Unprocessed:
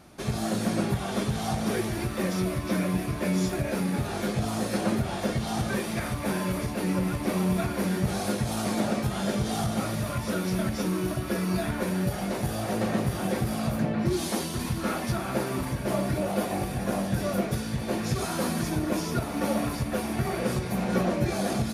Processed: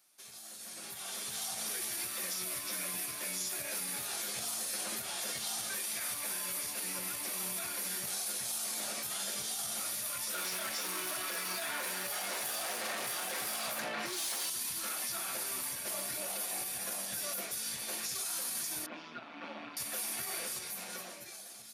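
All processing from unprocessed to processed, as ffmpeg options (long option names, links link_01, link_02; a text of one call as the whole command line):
ffmpeg -i in.wav -filter_complex "[0:a]asettb=1/sr,asplit=3[link_01][link_02][link_03];[link_01]atrim=end=10.344[link_04];[link_02]atrim=start=10.34:end=14.5,asetpts=PTS-STARTPTS,afade=type=in:duration=0.004:curve=qsin,afade=type=out:start_time=4.156:duration=0.004:curve=qsin,asplit=2[link_05][link_06];[link_06]highpass=frequency=720:poles=1,volume=21dB,asoftclip=type=tanh:threshold=-12.5dB[link_07];[link_05][link_07]amix=inputs=2:normalize=0,lowpass=frequency=1600:poles=1,volume=-6dB,highshelf=frequency=9600:gain=5.5[link_08];[link_03]atrim=start=14.496[link_09];[link_04][link_08]acrossfade=duration=0.004:curve1=hsin:curve2=qsin[link_10];[link_10][link_09]acrossfade=duration=0.004:curve1=qsin:curve2=hsin,asettb=1/sr,asplit=3[link_11][link_12][link_13];[link_11]atrim=end=18.864[link_14];[link_12]atrim=start=18.86:end=19.77,asetpts=PTS-STARTPTS,afade=type=in:duration=0.004:curve=qsin,afade=type=out:start_time=0.906:duration=0.004:curve=qsin,tremolo=f=160:d=0.621,highpass=140,equalizer=frequency=260:width_type=q:width=4:gain=8,equalizer=frequency=440:width_type=q:width=4:gain=-6,equalizer=frequency=1900:width_type=q:width=4:gain=-4,lowpass=frequency=2900:width=0.5412,lowpass=frequency=2900:width=1.3066[link_15];[link_13]atrim=start=19.766[link_16];[link_14][link_15]acrossfade=duration=0.004:curve1=hsin:curve2=qsin[link_17];[link_17][link_16]acrossfade=duration=0.004:curve1=qsin:curve2=hsin,aderivative,alimiter=level_in=10.5dB:limit=-24dB:level=0:latency=1,volume=-10.5dB,dynaudnorm=framelen=160:gausssize=13:maxgain=13dB,volume=-6dB" out.wav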